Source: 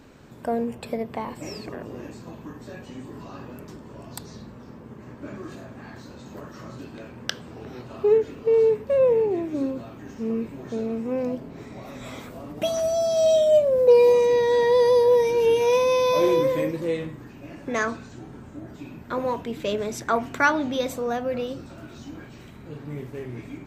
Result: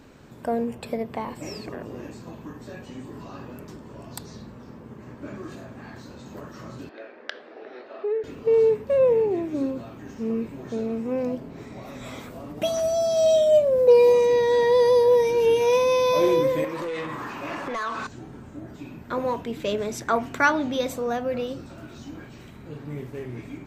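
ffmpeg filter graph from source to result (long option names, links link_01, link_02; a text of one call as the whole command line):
ffmpeg -i in.wav -filter_complex "[0:a]asettb=1/sr,asplit=3[link_01][link_02][link_03];[link_01]atrim=end=6.894[link_04];[link_02]atrim=start=6.89:end=8.24,asetpts=PTS-STARTPTS,afade=type=in:duration=0.004:curve=qsin,afade=type=out:start_time=1.346:duration=0.004:curve=qsin,highpass=frequency=350:width=0.5412,highpass=frequency=350:width=1.3066,equalizer=frequency=620:width_type=q:width=4:gain=5,equalizer=frequency=980:width_type=q:width=4:gain=-6,equalizer=frequency=1800:width_type=q:width=4:gain=5,equalizer=frequency=3000:width_type=q:width=4:gain=-5,lowpass=frequency=4000:width=0.5412,lowpass=frequency=4000:width=1.3066,acompressor=threshold=-29dB:ratio=2:attack=3.2:release=140:knee=1:detection=peak[link_05];[link_03]atrim=start=8.236[link_06];[link_04][link_05]acrossfade=duration=0.004:curve1=hsin:curve2=qsin[link_07];[link_07][link_06]acrossfade=duration=0.004:curve1=qsin:curve2=hsin,asettb=1/sr,asplit=3[link_08][link_09][link_10];[link_08]atrim=end=16.644[link_11];[link_09]atrim=start=16.64:end=18.07,asetpts=PTS-STARTPTS,afade=type=in:duration=0.004:curve=qsin,afade=type=out:start_time=1.426:duration=0.004:curve=qsin,equalizer=frequency=1100:width_type=o:width=0.81:gain=11.5,acompressor=threshold=-32dB:ratio=12:attack=3.2:release=140:knee=1:detection=peak,asplit=2[link_12][link_13];[link_13]highpass=frequency=720:poles=1,volume=19dB,asoftclip=type=tanh:threshold=-20.5dB[link_14];[link_12][link_14]amix=inputs=2:normalize=0,lowpass=frequency=6600:poles=1,volume=-6dB[link_15];[link_10]atrim=start=18.066[link_16];[link_11][link_15]acrossfade=duration=0.004:curve1=hsin:curve2=qsin[link_17];[link_17][link_16]acrossfade=duration=0.004:curve1=qsin:curve2=hsin" out.wav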